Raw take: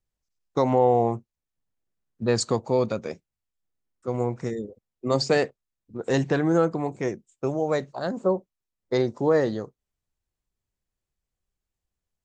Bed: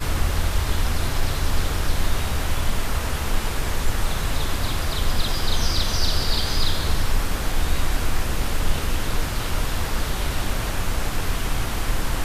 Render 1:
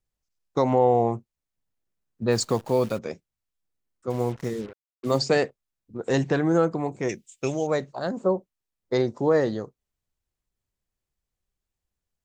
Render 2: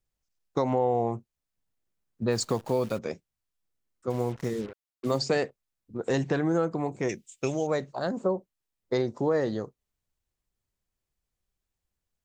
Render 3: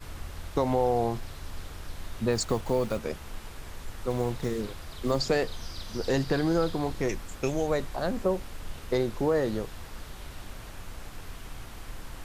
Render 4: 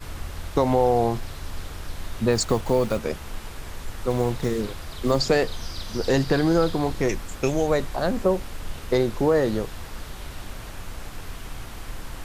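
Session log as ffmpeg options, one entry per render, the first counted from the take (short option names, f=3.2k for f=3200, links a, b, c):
-filter_complex "[0:a]asplit=3[a][b][c];[a]afade=t=out:st=2.3:d=0.02[d];[b]acrusher=bits=8:dc=4:mix=0:aa=0.000001,afade=t=in:st=2.3:d=0.02,afade=t=out:st=2.97:d=0.02[e];[c]afade=t=in:st=2.97:d=0.02[f];[d][e][f]amix=inputs=3:normalize=0,asettb=1/sr,asplit=3[g][h][i];[g]atrim=end=4.104[j];[h]atrim=start=4.1:end=5.19,asetpts=PTS-STARTPTS,afade=t=in:d=0.004:c=qsin,afade=t=out:st=1.086:d=0.004:c=qsin,acrusher=bits=6:mix=0:aa=0.5[k];[i]atrim=start=5.186[l];[j][k]acrossfade=d=0.004:c1=hsin:c2=qsin[m];[m][l]acrossfade=d=0.004:c1=qsin:c2=hsin,asettb=1/sr,asplit=3[n][o][p];[n]atrim=end=7.094[q];[o]atrim=start=7.09:end=7.67,asetpts=PTS-STARTPTS,afade=t=in:d=0.004:c=qsin,afade=t=out:st=0.576:d=0.004:c=qsin,highshelf=f=1.7k:t=q:w=1.5:g=13[r];[p]atrim=start=7.666[s];[q][r]acrossfade=d=0.004:c1=hsin:c2=qsin[t];[t][s]acrossfade=d=0.004:c1=qsin:c2=hsin"
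-af "acompressor=threshold=-25dB:ratio=2"
-filter_complex "[1:a]volume=-17.5dB[a];[0:a][a]amix=inputs=2:normalize=0"
-af "volume=5.5dB"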